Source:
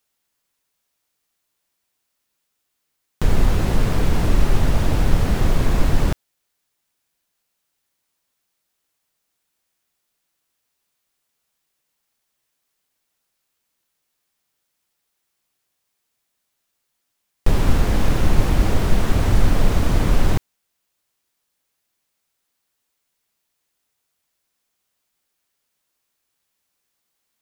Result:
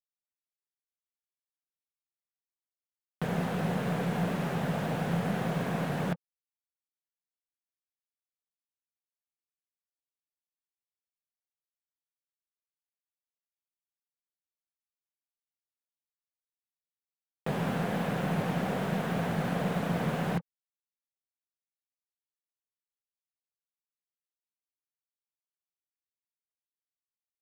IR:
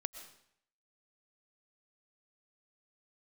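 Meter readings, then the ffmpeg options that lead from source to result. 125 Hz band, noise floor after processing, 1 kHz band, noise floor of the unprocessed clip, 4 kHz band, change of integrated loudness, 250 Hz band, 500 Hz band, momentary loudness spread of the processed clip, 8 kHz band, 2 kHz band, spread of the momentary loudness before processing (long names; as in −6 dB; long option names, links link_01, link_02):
−11.5 dB, below −85 dBFS, −5.5 dB, −76 dBFS, −11.0 dB, −10.0 dB, −6.0 dB, −6.0 dB, 3 LU, −14.0 dB, −6.0 dB, 4 LU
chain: -af "highpass=frequency=150:width=0.5412,highpass=frequency=150:width=1.3066,equalizer=frequency=170:width_type=q:width=4:gain=10,equalizer=frequency=320:width_type=q:width=4:gain=-7,equalizer=frequency=500:width_type=q:width=4:gain=4,equalizer=frequency=720:width_type=q:width=4:gain=6,equalizer=frequency=1600:width_type=q:width=4:gain=4,lowpass=frequency=3600:width=0.5412,lowpass=frequency=3600:width=1.3066,acrusher=bits=5:mix=0:aa=0.5,aeval=exprs='0.335*(cos(1*acos(clip(val(0)/0.335,-1,1)))-cos(1*PI/2))+0.00668*(cos(6*acos(clip(val(0)/0.335,-1,1)))-cos(6*PI/2))':channel_layout=same,volume=-8.5dB"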